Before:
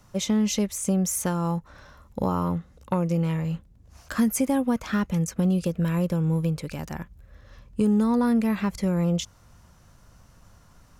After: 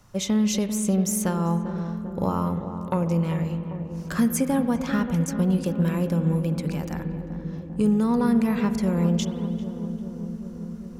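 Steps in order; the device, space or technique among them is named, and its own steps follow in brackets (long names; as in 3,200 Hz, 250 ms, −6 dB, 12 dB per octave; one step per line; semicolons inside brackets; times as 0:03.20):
dub delay into a spring reverb (feedback echo with a low-pass in the loop 395 ms, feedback 80%, low-pass 890 Hz, level −8.5 dB; spring reverb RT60 2.1 s, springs 47 ms, chirp 45 ms, DRR 11 dB)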